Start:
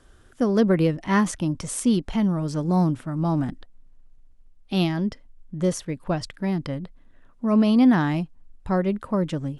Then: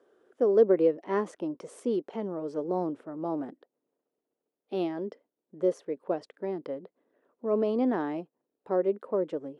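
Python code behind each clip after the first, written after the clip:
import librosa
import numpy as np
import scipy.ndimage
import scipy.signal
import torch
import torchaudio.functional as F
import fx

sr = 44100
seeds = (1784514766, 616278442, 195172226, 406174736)

y = fx.ladder_highpass(x, sr, hz=380.0, resonance_pct=55)
y = fx.tilt_eq(y, sr, slope=-4.0)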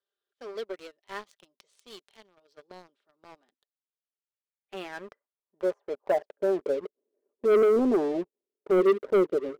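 y = x + 0.46 * np.pad(x, (int(5.0 * sr / 1000.0), 0))[:len(x)]
y = fx.filter_sweep_bandpass(y, sr, from_hz=3900.0, to_hz=400.0, start_s=3.76, end_s=6.86, q=2.7)
y = fx.leveller(y, sr, passes=3)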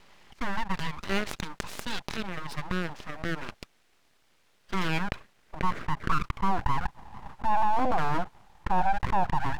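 y = fx.bandpass_q(x, sr, hz=850.0, q=0.82)
y = np.abs(y)
y = fx.env_flatten(y, sr, amount_pct=70)
y = y * 10.0 ** (2.0 / 20.0)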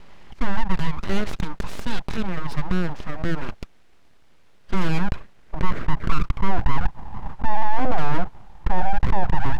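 y = 10.0 ** (-21.5 / 20.0) * np.tanh(x / 10.0 ** (-21.5 / 20.0))
y = fx.tilt_eq(y, sr, slope=-2.0)
y = y * 10.0 ** (6.0 / 20.0)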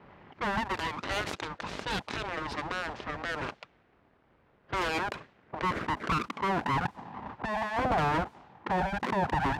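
y = fx.spec_gate(x, sr, threshold_db=-25, keep='weak')
y = fx.env_lowpass(y, sr, base_hz=1500.0, full_db=-28.5)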